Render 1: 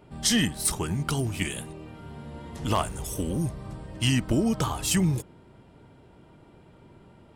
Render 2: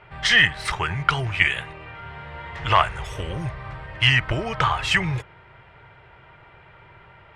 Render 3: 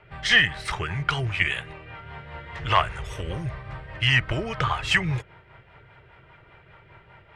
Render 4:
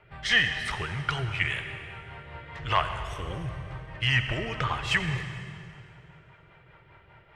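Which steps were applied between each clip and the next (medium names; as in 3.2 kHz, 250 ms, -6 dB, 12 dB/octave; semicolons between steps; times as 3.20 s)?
FFT filter 130 Hz 0 dB, 250 Hz -18 dB, 390 Hz -4 dB, 2 kHz +15 dB, 14 kHz -26 dB; trim +3 dB
rotary cabinet horn 5 Hz
reverberation RT60 2.4 s, pre-delay 63 ms, DRR 8 dB; trim -4.5 dB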